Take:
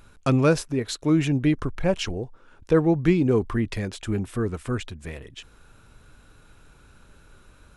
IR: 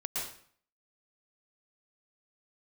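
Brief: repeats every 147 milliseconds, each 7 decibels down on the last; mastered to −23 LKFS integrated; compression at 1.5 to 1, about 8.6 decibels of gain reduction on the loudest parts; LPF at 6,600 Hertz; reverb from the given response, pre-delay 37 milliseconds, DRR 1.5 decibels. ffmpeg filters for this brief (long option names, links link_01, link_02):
-filter_complex "[0:a]lowpass=6600,acompressor=threshold=-39dB:ratio=1.5,aecho=1:1:147|294|441|588|735:0.447|0.201|0.0905|0.0407|0.0183,asplit=2[link_01][link_02];[1:a]atrim=start_sample=2205,adelay=37[link_03];[link_02][link_03]afir=irnorm=-1:irlink=0,volume=-5.5dB[link_04];[link_01][link_04]amix=inputs=2:normalize=0,volume=6dB"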